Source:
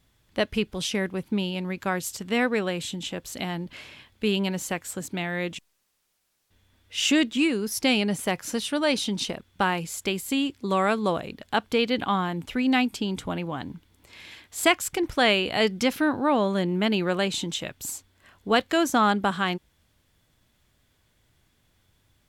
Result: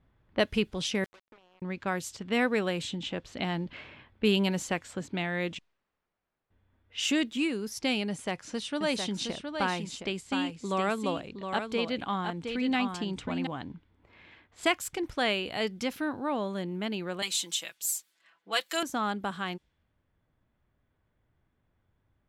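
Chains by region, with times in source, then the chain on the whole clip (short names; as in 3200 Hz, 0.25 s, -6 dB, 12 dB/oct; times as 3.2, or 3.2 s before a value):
1.04–1.62 HPF 470 Hz 24 dB/oct + compressor 12:1, threshold -49 dBFS + requantised 8-bit, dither none
8.09–13.47 LPF 9800 Hz 24 dB/oct + echo 0.716 s -6.5 dB
17.22–18.83 HPF 240 Hz 6 dB/oct + tilt +4 dB/oct + comb 6 ms, depth 84%
whole clip: low-pass opened by the level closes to 1500 Hz, open at -22.5 dBFS; vocal rider 2 s; gain -7.5 dB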